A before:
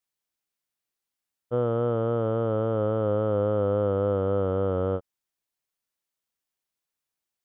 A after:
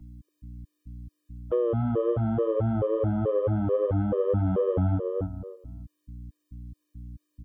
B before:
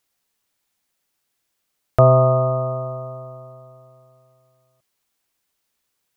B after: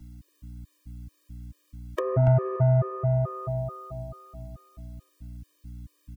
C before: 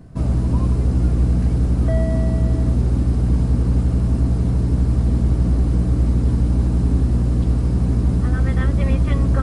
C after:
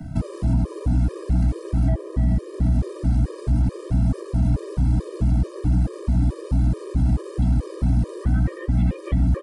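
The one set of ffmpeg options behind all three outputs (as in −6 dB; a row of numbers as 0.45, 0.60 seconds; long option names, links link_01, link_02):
-filter_complex "[0:a]aeval=exprs='val(0)+0.00251*(sin(2*PI*60*n/s)+sin(2*PI*2*60*n/s)/2+sin(2*PI*3*60*n/s)/3+sin(2*PI*4*60*n/s)/4+sin(2*PI*5*60*n/s)/5)':channel_layout=same,acrossover=split=81|170|480[link_01][link_02][link_03][link_04];[link_01]acompressor=threshold=-26dB:ratio=4[link_05];[link_02]acompressor=threshold=-31dB:ratio=4[link_06];[link_03]acompressor=threshold=-27dB:ratio=4[link_07];[link_04]acompressor=threshold=-40dB:ratio=4[link_08];[link_05][link_06][link_07][link_08]amix=inputs=4:normalize=0,asplit=2[link_09][link_10];[link_10]adelay=284,lowpass=frequency=1800:poles=1,volume=-5.5dB,asplit=2[link_11][link_12];[link_12]adelay=284,lowpass=frequency=1800:poles=1,volume=0.26,asplit=2[link_13][link_14];[link_14]adelay=284,lowpass=frequency=1800:poles=1,volume=0.26[link_15];[link_09][link_11][link_13][link_15]amix=inputs=4:normalize=0,asplit=2[link_16][link_17];[link_17]acompressor=threshold=-28dB:ratio=6,volume=2dB[link_18];[link_16][link_18]amix=inputs=2:normalize=0,asoftclip=type=tanh:threshold=-14dB,afftfilt=real='re*gt(sin(2*PI*2.3*pts/sr)*(1-2*mod(floor(b*sr/1024/320),2)),0)':imag='im*gt(sin(2*PI*2.3*pts/sr)*(1-2*mod(floor(b*sr/1024/320),2)),0)':win_size=1024:overlap=0.75,volume=2dB"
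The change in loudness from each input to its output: −0.5, −8.0, −4.0 LU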